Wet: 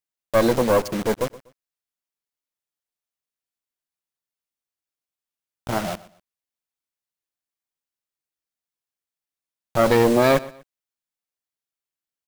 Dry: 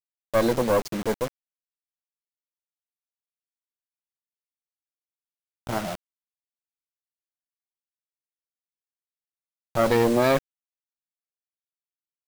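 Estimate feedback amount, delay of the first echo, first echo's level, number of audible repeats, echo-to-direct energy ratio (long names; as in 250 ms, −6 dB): 30%, 122 ms, −19.5 dB, 2, −19.0 dB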